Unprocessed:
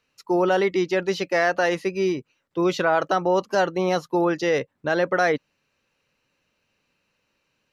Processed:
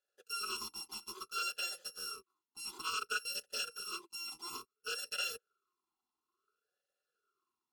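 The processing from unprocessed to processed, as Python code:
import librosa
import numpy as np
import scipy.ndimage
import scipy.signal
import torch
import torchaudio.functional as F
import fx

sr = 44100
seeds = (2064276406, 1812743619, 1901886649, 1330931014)

y = fx.bit_reversed(x, sr, seeds[0], block=256)
y = fx.fixed_phaser(y, sr, hz=440.0, stages=8)
y = fx.vowel_sweep(y, sr, vowels='e-u', hz=0.58)
y = y * 10.0 ** (9.5 / 20.0)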